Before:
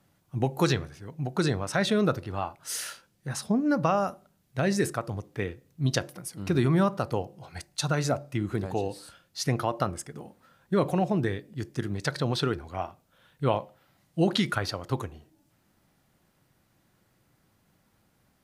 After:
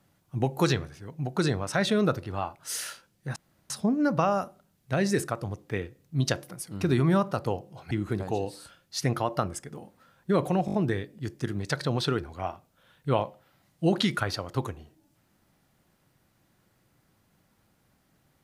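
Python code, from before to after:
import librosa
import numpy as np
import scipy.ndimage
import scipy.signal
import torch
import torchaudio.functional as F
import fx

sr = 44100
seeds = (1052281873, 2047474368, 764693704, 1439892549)

y = fx.edit(x, sr, fx.insert_room_tone(at_s=3.36, length_s=0.34),
    fx.cut(start_s=7.57, length_s=0.77),
    fx.stutter(start_s=11.09, slice_s=0.02, count=5), tone=tone)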